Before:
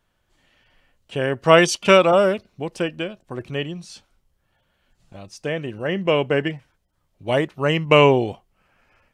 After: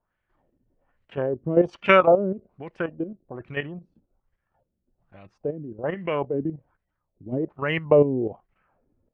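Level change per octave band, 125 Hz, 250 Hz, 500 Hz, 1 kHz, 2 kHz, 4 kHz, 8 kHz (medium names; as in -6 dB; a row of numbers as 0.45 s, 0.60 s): -6.0 dB, -3.5 dB, -4.0 dB, -5.5 dB, -6.0 dB, -13.5 dB, under -30 dB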